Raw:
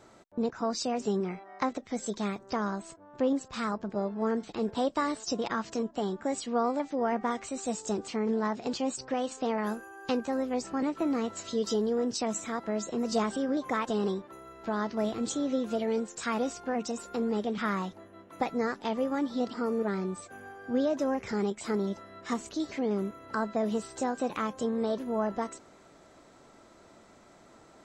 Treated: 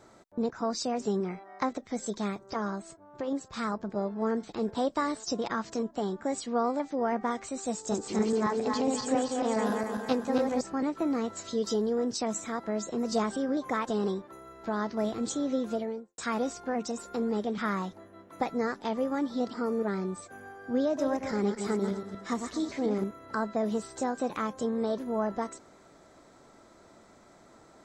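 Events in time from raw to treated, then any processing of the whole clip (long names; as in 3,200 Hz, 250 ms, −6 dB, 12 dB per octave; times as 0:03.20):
0:02.36–0:03.57: notch comb filter 250 Hz
0:07.78–0:10.61: feedback delay that plays each chunk backwards 137 ms, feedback 64%, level −2 dB
0:15.66–0:16.18: fade out and dull
0:20.84–0:23.04: feedback delay that plays each chunk backwards 119 ms, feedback 44%, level −6.5 dB
whole clip: parametric band 2,800 Hz −5.5 dB 0.4 octaves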